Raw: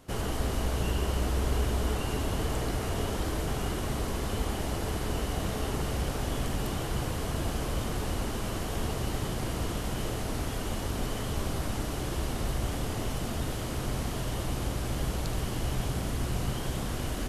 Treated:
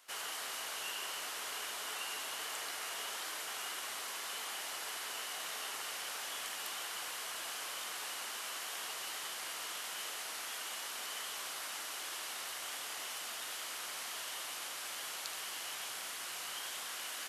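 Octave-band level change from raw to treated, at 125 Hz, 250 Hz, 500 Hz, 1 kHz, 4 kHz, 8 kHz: under -40 dB, -28.5 dB, -17.5 dB, -7.5 dB, 0.0 dB, 0.0 dB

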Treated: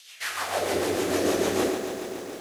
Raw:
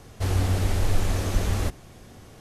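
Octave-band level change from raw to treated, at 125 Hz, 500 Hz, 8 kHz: -17.5, +9.5, +4.0 dB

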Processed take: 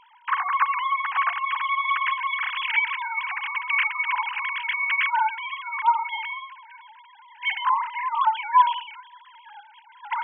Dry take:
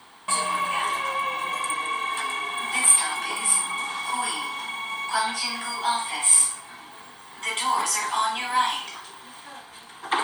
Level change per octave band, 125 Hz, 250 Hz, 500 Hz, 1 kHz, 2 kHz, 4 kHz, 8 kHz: n/a, under -35 dB, under -20 dB, +3.0 dB, +4.0 dB, -5.0 dB, under -40 dB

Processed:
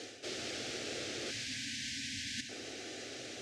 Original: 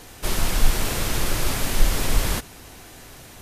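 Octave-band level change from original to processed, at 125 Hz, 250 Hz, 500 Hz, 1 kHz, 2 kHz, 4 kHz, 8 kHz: -24.5, -13.5, -12.0, -21.0, -11.0, -8.5, -14.0 dB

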